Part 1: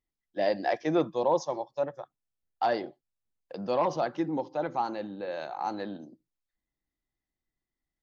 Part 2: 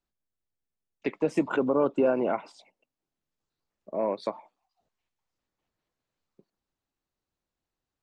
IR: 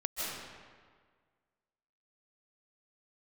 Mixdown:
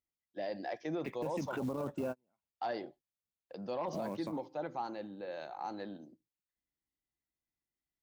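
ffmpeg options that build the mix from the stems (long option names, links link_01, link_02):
-filter_complex "[0:a]equalizer=frequency=1100:width_type=o:width=0.74:gain=-2,volume=-7dB,asplit=2[link_01][link_02];[1:a]asubboost=boost=9.5:cutoff=150,acrusher=bits=6:mode=log:mix=0:aa=0.000001,volume=-5.5dB[link_03];[link_02]apad=whole_len=353822[link_04];[link_03][link_04]sidechaingate=range=-48dB:threshold=-56dB:ratio=16:detection=peak[link_05];[link_01][link_05]amix=inputs=2:normalize=0,highpass=45,alimiter=level_in=4.5dB:limit=-24dB:level=0:latency=1:release=47,volume=-4.5dB"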